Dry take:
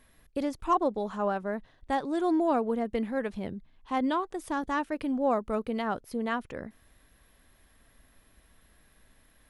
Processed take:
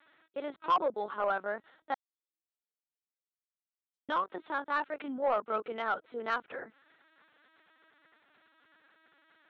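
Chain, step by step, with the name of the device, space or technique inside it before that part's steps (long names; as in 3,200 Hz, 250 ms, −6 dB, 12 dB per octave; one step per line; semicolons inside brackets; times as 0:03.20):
talking toy (linear-prediction vocoder at 8 kHz pitch kept; high-pass filter 410 Hz 12 dB per octave; parametric band 1,400 Hz +8 dB 0.37 octaves; soft clipping −19.5 dBFS, distortion −17 dB)
0:01.94–0:04.09: inverse Chebyshev high-pass filter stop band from 2,300 Hz, stop band 80 dB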